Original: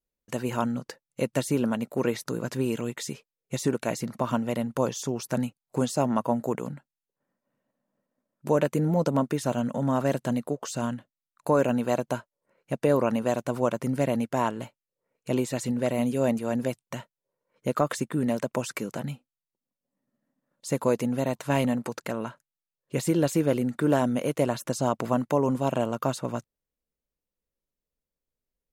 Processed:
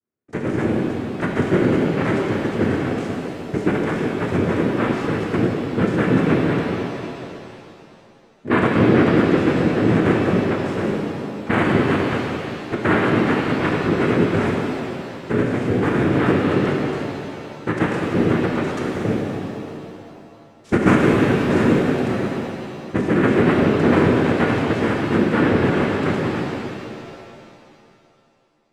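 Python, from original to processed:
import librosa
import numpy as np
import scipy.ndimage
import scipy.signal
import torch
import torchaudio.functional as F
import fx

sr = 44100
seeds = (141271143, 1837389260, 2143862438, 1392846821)

y = fx.halfwave_hold(x, sr, at=(19.04, 21.16))
y = fx.tilt_eq(y, sr, slope=-4.5)
y = fx.noise_vocoder(y, sr, seeds[0], bands=3)
y = fx.rev_shimmer(y, sr, seeds[1], rt60_s=2.7, semitones=7, shimmer_db=-8, drr_db=-1.5)
y = y * librosa.db_to_amplitude(-4.0)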